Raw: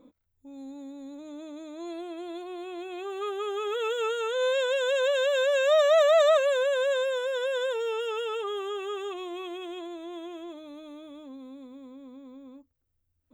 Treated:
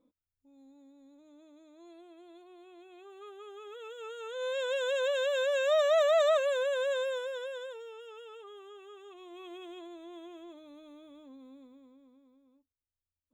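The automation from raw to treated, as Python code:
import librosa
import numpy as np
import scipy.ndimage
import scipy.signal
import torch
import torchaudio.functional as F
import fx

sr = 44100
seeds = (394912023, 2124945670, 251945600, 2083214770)

y = fx.gain(x, sr, db=fx.line((3.95, -16.0), (4.74, -5.0), (7.12, -5.0), (7.92, -17.0), (9.03, -17.0), (9.54, -8.0), (11.57, -8.0), (12.45, -19.5)))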